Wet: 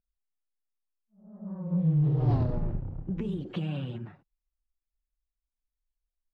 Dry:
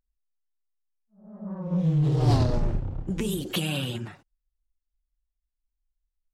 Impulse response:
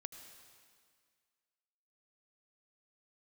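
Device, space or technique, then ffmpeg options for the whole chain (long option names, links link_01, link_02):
phone in a pocket: -af "lowpass=3100,equalizer=frequency=160:width_type=o:width=0.74:gain=5,highshelf=frequency=2100:gain=-10.5,volume=-6dB"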